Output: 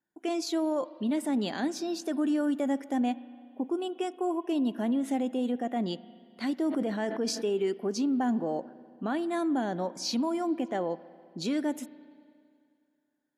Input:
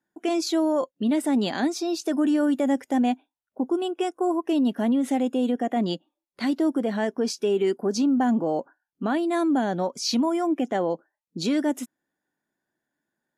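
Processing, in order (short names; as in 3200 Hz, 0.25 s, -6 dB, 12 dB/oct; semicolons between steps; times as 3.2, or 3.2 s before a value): spring tank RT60 2.3 s, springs 33/48 ms, chirp 55 ms, DRR 16.5 dB; 6.67–7.5 sustainer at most 53 dB/s; gain -6 dB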